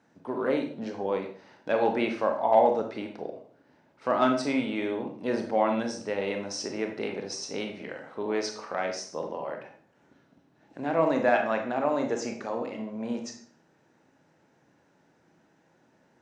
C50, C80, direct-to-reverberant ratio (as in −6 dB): 7.0 dB, 11.5 dB, 3.5 dB